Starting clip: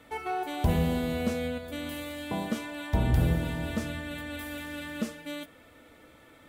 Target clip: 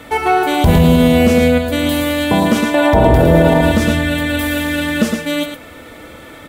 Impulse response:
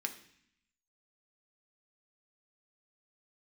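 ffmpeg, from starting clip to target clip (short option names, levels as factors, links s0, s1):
-filter_complex "[0:a]asettb=1/sr,asplit=3[s0][s1][s2];[s0]atrim=end=2.744[s3];[s1]atrim=start=2.74:end=3.61,asetpts=PTS-STARTPTS,afade=t=in:d=0.004:c=qsin,afade=t=out:st=0.866:d=0.004:c=qsin,equalizer=f=630:t=o:w=2.1:g=14[s4];[s2]atrim=start=3.606[s5];[s3][s4]acrossfade=d=0.004:c1=hsin:c2=qsin[s6];[s6][s5]acrossfade=d=0.004:c1=qsin:c2=hsin,asplit=2[s7][s8];[s8]aecho=0:1:109:0.447[s9];[s7][s9]amix=inputs=2:normalize=0,alimiter=level_in=9.44:limit=0.891:release=50:level=0:latency=1,volume=0.891"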